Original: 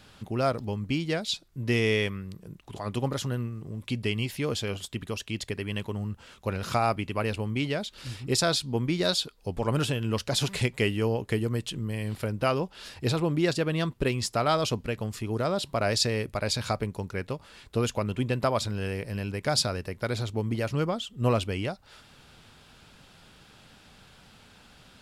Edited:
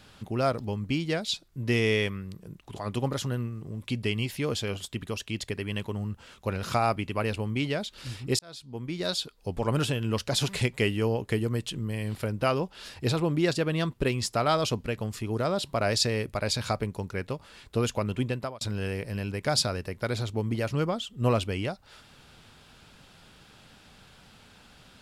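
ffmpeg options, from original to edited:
ffmpeg -i in.wav -filter_complex "[0:a]asplit=3[link_01][link_02][link_03];[link_01]atrim=end=8.39,asetpts=PTS-STARTPTS,afade=type=out:start_time=8.386:duration=0.004:curve=hsin[link_04];[link_02]atrim=start=8.39:end=18.61,asetpts=PTS-STARTPTS,afade=type=in:duration=1.12,afade=type=out:start_time=9.83:duration=0.39[link_05];[link_03]atrim=start=18.61,asetpts=PTS-STARTPTS,afade=type=in:duration=0.004:curve=hsin[link_06];[link_04][link_05][link_06]concat=n=3:v=0:a=1" out.wav

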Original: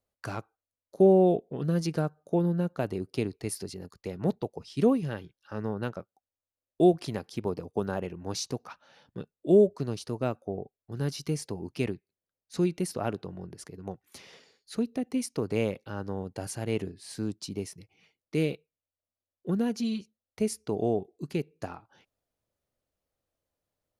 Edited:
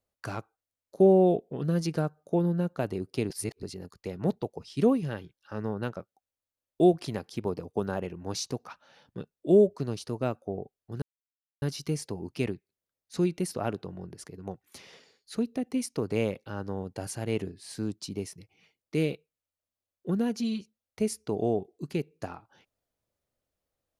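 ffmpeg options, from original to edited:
ffmpeg -i in.wav -filter_complex "[0:a]asplit=4[link_01][link_02][link_03][link_04];[link_01]atrim=end=3.302[link_05];[link_02]atrim=start=3.298:end=3.632,asetpts=PTS-STARTPTS,areverse[link_06];[link_03]atrim=start=3.628:end=11.02,asetpts=PTS-STARTPTS,afade=type=out:start_time=7.388:duration=0.004:curve=hsin,apad=pad_dur=0.6[link_07];[link_04]atrim=start=11.02,asetpts=PTS-STARTPTS,afade=type=in:duration=0.004:curve=hsin[link_08];[link_05][link_06]acrossfade=duration=0.004:curve1=hsin:curve2=hsin[link_09];[link_07][link_08]concat=n=2:v=0:a=1[link_10];[link_09][link_10]acrossfade=duration=0.004:curve1=hsin:curve2=hsin" out.wav

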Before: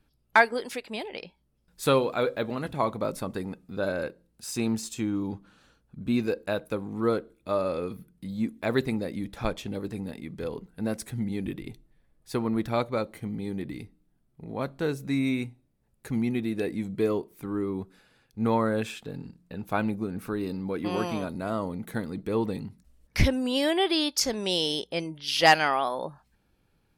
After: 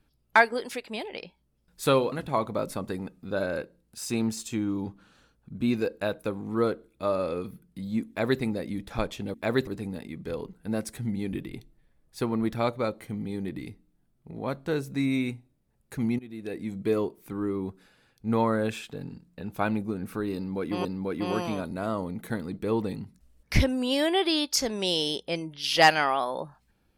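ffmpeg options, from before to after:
ffmpeg -i in.wav -filter_complex "[0:a]asplit=6[link_01][link_02][link_03][link_04][link_05][link_06];[link_01]atrim=end=2.122[link_07];[link_02]atrim=start=2.578:end=9.802[link_08];[link_03]atrim=start=8.538:end=8.872[link_09];[link_04]atrim=start=9.798:end=16.32,asetpts=PTS-STARTPTS,afade=type=out:start_time=6.518:duration=0.004:curve=hsin:silence=0.0944061[link_10];[link_05]atrim=start=16.32:end=20.982,asetpts=PTS-STARTPTS,afade=type=in:duration=0.67:silence=0.0944061[link_11];[link_06]atrim=start=20.488[link_12];[link_07][link_08]acrossfade=duration=0.004:curve1=hsin:curve2=hsin[link_13];[link_13][link_09]acrossfade=duration=0.004:curve1=hsin:curve2=hsin[link_14];[link_10][link_11]concat=n=2:v=0:a=1[link_15];[link_14][link_15]acrossfade=duration=0.004:curve1=hsin:curve2=hsin[link_16];[link_16][link_12]acrossfade=duration=0.004:curve1=hsin:curve2=hsin" out.wav

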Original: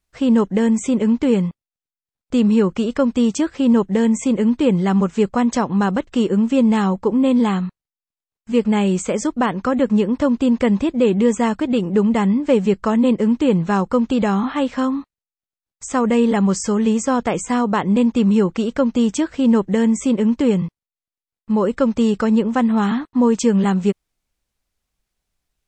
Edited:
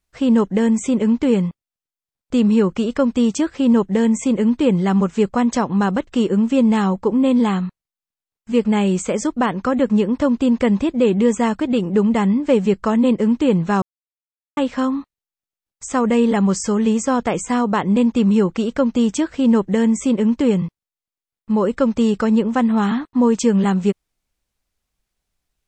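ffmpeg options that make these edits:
ffmpeg -i in.wav -filter_complex "[0:a]asplit=3[link_01][link_02][link_03];[link_01]atrim=end=13.82,asetpts=PTS-STARTPTS,afade=type=out:start_time=13.816:duration=0.004:curve=hsin[link_04];[link_02]atrim=start=13.82:end=14.57,asetpts=PTS-STARTPTS,volume=0[link_05];[link_03]atrim=start=14.57,asetpts=PTS-STARTPTS,afade=type=in:duration=0.004:curve=hsin[link_06];[link_04][link_05][link_06]concat=n=3:v=0:a=1" out.wav

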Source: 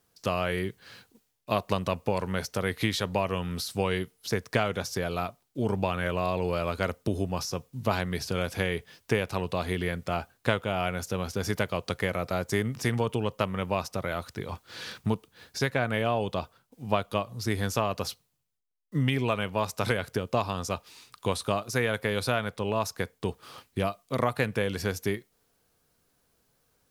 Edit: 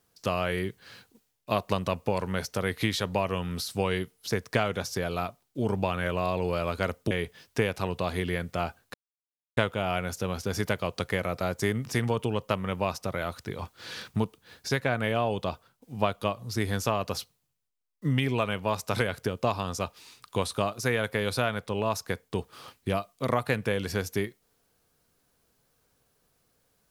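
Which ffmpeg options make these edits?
ffmpeg -i in.wav -filter_complex "[0:a]asplit=3[link_01][link_02][link_03];[link_01]atrim=end=7.112[link_04];[link_02]atrim=start=8.638:end=10.47,asetpts=PTS-STARTPTS,afade=type=out:start_time=1.828:duration=0.004:curve=hsin,apad=pad_dur=0.63[link_05];[link_03]atrim=start=10.47,asetpts=PTS-STARTPTS,afade=type=in:duration=0.004:curve=hsin[link_06];[link_05][link_06]concat=n=2:v=0:a=1[link_07];[link_04][link_07]acrossfade=duration=0.004:curve1=hsin:curve2=hsin" out.wav

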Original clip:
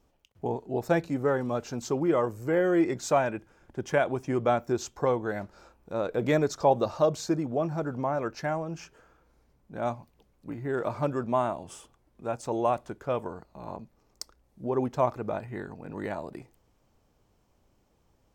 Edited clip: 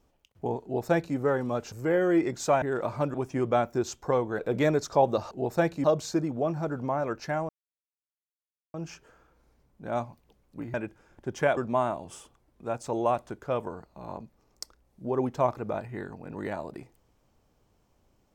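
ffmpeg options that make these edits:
ffmpeg -i in.wav -filter_complex "[0:a]asplit=10[link_01][link_02][link_03][link_04][link_05][link_06][link_07][link_08][link_09][link_10];[link_01]atrim=end=1.722[link_11];[link_02]atrim=start=2.348:end=3.252[link_12];[link_03]atrim=start=10.638:end=11.162[link_13];[link_04]atrim=start=4.078:end=5.332[link_14];[link_05]atrim=start=6.068:end=6.992[link_15];[link_06]atrim=start=0.628:end=1.162[link_16];[link_07]atrim=start=6.988:end=8.64,asetpts=PTS-STARTPTS,afade=type=out:start_time=1.648:duration=0.004:curve=hsin,apad=pad_dur=1.25[link_17];[link_08]atrim=start=8.64:end=10.642,asetpts=PTS-STARTPTS,afade=type=in:duration=0.004:curve=hsin[link_18];[link_09]atrim=start=3.248:end=4.082[link_19];[link_10]atrim=start=11.158[link_20];[link_11][link_12]acrossfade=duration=0.004:curve1=hsin:curve2=hsin[link_21];[link_21][link_13]acrossfade=duration=0.004:curve1=hsin:curve2=hsin[link_22];[link_22][link_14]acrossfade=duration=0.004:curve1=hsin:curve2=hsin[link_23];[link_23][link_15]acrossfade=duration=0.004:curve1=hsin:curve2=hsin[link_24];[link_24][link_16]acrossfade=duration=0.004:curve1=hsin:curve2=hsin[link_25];[link_17][link_18]concat=n=2:v=0:a=1[link_26];[link_25][link_26]acrossfade=duration=0.004:curve1=hsin:curve2=hsin[link_27];[link_27][link_19]acrossfade=duration=0.004:curve1=hsin:curve2=hsin[link_28];[link_28][link_20]acrossfade=duration=0.004:curve1=hsin:curve2=hsin" out.wav

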